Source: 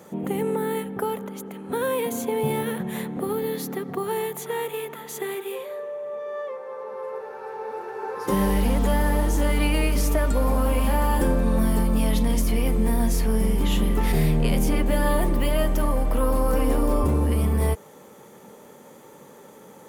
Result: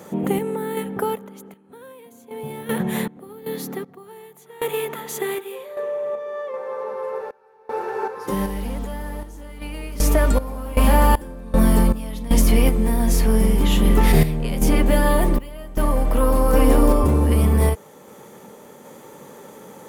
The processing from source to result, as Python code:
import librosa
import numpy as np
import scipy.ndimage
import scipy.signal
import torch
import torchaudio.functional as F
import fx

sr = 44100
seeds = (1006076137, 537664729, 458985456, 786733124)

y = fx.tremolo_random(x, sr, seeds[0], hz=2.6, depth_pct=95)
y = y * librosa.db_to_amplitude(7.0)